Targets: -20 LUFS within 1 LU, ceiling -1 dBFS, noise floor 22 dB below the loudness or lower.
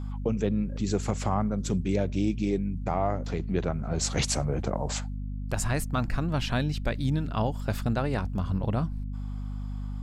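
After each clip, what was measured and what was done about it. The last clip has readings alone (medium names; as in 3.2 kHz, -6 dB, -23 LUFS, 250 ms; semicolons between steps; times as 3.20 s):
hum 50 Hz; highest harmonic 250 Hz; hum level -31 dBFS; loudness -29.5 LUFS; peak level -13.5 dBFS; loudness target -20.0 LUFS
-> de-hum 50 Hz, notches 5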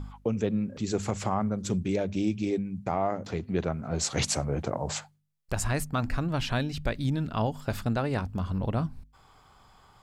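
hum not found; loudness -30.0 LUFS; peak level -14.5 dBFS; loudness target -20.0 LUFS
-> trim +10 dB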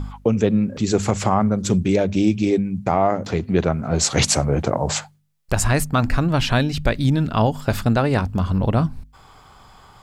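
loudness -20.0 LUFS; peak level -4.5 dBFS; noise floor -49 dBFS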